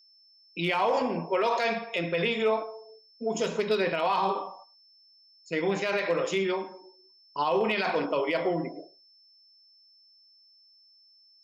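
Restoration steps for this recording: clip repair -17.5 dBFS; notch 5300 Hz, Q 30; inverse comb 0.107 s -24 dB

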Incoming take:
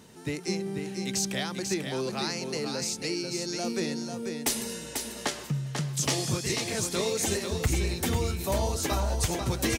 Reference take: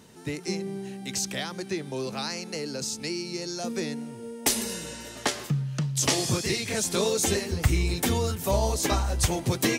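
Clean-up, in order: clip repair -18 dBFS; de-click; inverse comb 0.492 s -6 dB; gain 0 dB, from 4.29 s +3.5 dB

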